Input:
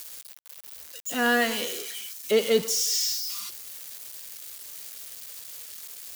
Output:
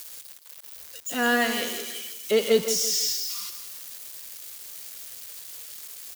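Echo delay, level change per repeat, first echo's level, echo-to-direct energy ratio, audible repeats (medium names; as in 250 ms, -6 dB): 166 ms, -9.0 dB, -9.5 dB, -9.0 dB, 3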